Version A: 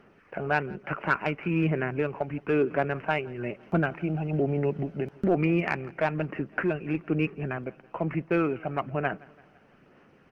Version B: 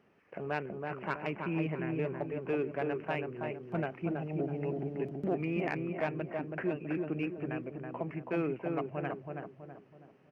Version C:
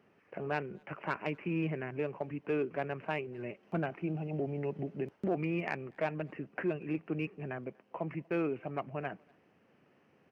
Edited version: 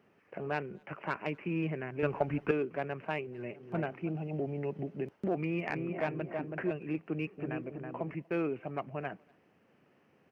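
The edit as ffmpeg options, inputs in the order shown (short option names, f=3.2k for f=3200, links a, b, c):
-filter_complex "[1:a]asplit=3[a][b][c];[2:a]asplit=5[d][e][f][g][h];[d]atrim=end=2.032[i];[0:a]atrim=start=2.028:end=2.512[j];[e]atrim=start=2.508:end=3.73[k];[a]atrim=start=3.49:end=4.17[l];[f]atrim=start=3.93:end=5.702[m];[b]atrim=start=5.698:end=6.712[n];[g]atrim=start=6.708:end=7.392[o];[c]atrim=start=7.388:end=8.132[p];[h]atrim=start=8.128[q];[i][j]acrossfade=d=0.004:c1=hsin:c2=hsin[r];[r][k]acrossfade=d=0.004:c1=hsin:c2=hsin[s];[s][l]acrossfade=d=0.24:c1=tri:c2=tri[t];[t][m]acrossfade=d=0.24:c1=tri:c2=tri[u];[u][n]acrossfade=d=0.004:c1=hsin:c2=hsin[v];[v][o]acrossfade=d=0.004:c1=hsin:c2=hsin[w];[w][p]acrossfade=d=0.004:c1=hsin:c2=hsin[x];[x][q]acrossfade=d=0.004:c1=hsin:c2=hsin"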